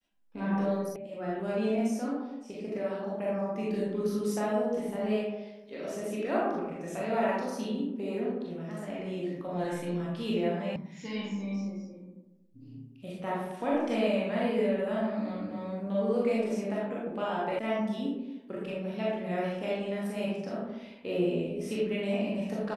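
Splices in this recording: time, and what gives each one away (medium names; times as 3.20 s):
0.96 s: sound stops dead
10.76 s: sound stops dead
17.59 s: sound stops dead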